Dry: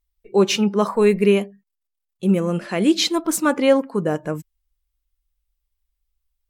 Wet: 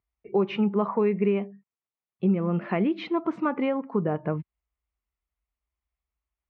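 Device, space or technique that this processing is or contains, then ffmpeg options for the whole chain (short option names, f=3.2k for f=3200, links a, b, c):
bass amplifier: -af "acompressor=threshold=-23dB:ratio=4,highpass=f=69:w=0.5412,highpass=f=69:w=1.3066,equalizer=f=300:t=q:w=4:g=-4,equalizer=f=530:t=q:w=4:g=-6,equalizer=f=1.6k:t=q:w=4:g=-8,lowpass=f=2.2k:w=0.5412,lowpass=f=2.2k:w=1.3066,volume=3dB"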